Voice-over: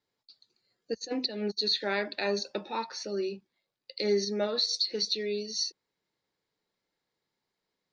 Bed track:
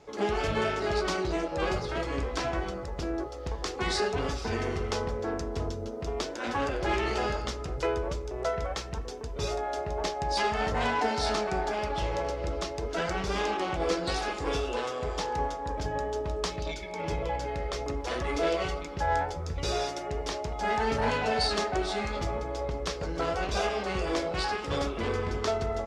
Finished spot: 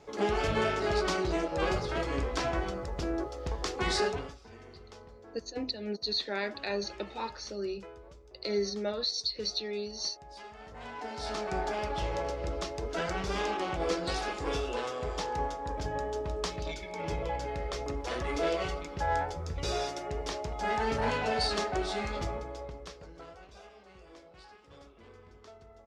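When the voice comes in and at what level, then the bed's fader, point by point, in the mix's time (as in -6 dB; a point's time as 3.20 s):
4.45 s, -3.5 dB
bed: 4.09 s -0.5 dB
4.39 s -20 dB
10.65 s -20 dB
11.57 s -2.5 dB
22.23 s -2.5 dB
23.58 s -24 dB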